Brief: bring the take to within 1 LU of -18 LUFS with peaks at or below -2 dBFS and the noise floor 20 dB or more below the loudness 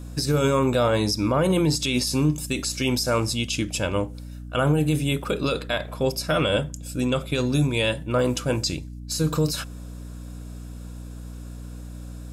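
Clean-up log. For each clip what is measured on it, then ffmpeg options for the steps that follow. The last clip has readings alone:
hum 60 Hz; harmonics up to 300 Hz; hum level -34 dBFS; loudness -24.0 LUFS; peak -11.0 dBFS; loudness target -18.0 LUFS
-> -af "bandreject=f=60:t=h:w=4,bandreject=f=120:t=h:w=4,bandreject=f=180:t=h:w=4,bandreject=f=240:t=h:w=4,bandreject=f=300:t=h:w=4"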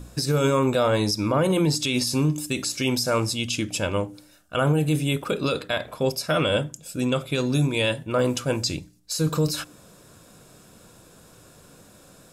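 hum none; loudness -24.0 LUFS; peak -11.5 dBFS; loudness target -18.0 LUFS
-> -af "volume=6dB"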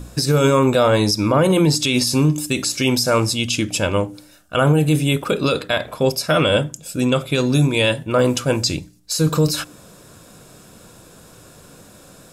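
loudness -18.0 LUFS; peak -5.5 dBFS; noise floor -46 dBFS

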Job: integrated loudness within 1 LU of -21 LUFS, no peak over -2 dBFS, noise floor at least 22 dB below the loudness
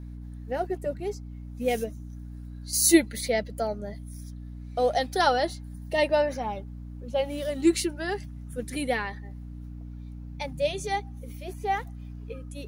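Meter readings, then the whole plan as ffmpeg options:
hum 60 Hz; harmonics up to 300 Hz; hum level -37 dBFS; loudness -27.5 LUFS; peak -6.5 dBFS; loudness target -21.0 LUFS
-> -af "bandreject=f=60:t=h:w=4,bandreject=f=120:t=h:w=4,bandreject=f=180:t=h:w=4,bandreject=f=240:t=h:w=4,bandreject=f=300:t=h:w=4"
-af "volume=6.5dB,alimiter=limit=-2dB:level=0:latency=1"

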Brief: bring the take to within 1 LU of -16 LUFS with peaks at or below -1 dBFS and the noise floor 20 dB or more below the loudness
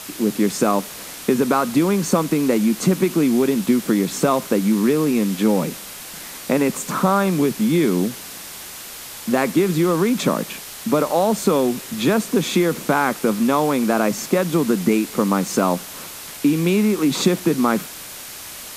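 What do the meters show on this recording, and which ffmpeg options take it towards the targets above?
noise floor -36 dBFS; noise floor target -40 dBFS; loudness -19.5 LUFS; peak -3.5 dBFS; loudness target -16.0 LUFS
-> -af "afftdn=nr=6:nf=-36"
-af "volume=3.5dB,alimiter=limit=-1dB:level=0:latency=1"

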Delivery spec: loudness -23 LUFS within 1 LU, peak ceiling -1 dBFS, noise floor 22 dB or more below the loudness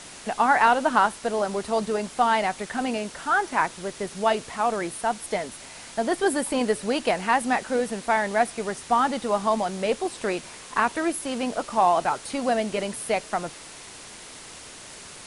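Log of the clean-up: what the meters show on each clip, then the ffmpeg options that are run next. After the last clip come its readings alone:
noise floor -43 dBFS; noise floor target -47 dBFS; loudness -25.0 LUFS; peak -5.5 dBFS; loudness target -23.0 LUFS
-> -af "afftdn=nr=6:nf=-43"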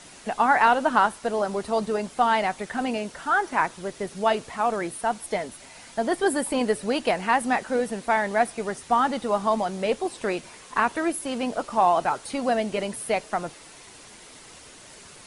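noise floor -47 dBFS; loudness -25.0 LUFS; peak -5.5 dBFS; loudness target -23.0 LUFS
-> -af "volume=2dB"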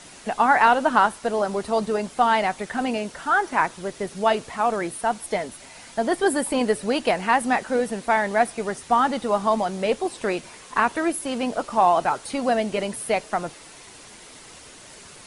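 loudness -23.0 LUFS; peak -3.5 dBFS; noise floor -45 dBFS

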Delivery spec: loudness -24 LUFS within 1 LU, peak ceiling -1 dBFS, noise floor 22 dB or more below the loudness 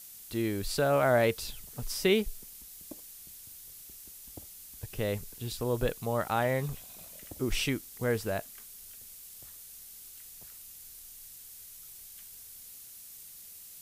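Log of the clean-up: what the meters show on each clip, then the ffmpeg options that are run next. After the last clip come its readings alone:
noise floor -49 dBFS; noise floor target -53 dBFS; loudness -31.0 LUFS; peak -12.5 dBFS; loudness target -24.0 LUFS
-> -af "afftdn=nr=6:nf=-49"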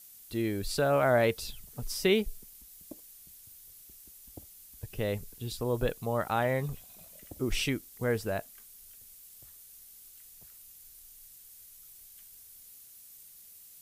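noise floor -53 dBFS; loudness -31.0 LUFS; peak -12.5 dBFS; loudness target -24.0 LUFS
-> -af "volume=7dB"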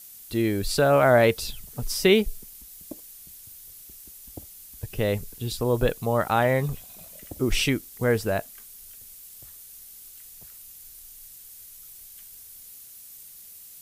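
loudness -24.0 LUFS; peak -5.5 dBFS; noise floor -46 dBFS

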